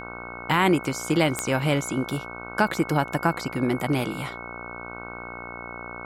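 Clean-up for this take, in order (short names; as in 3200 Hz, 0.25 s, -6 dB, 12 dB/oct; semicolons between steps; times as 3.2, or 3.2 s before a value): de-click; de-hum 59.2 Hz, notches 26; notch 2200 Hz, Q 30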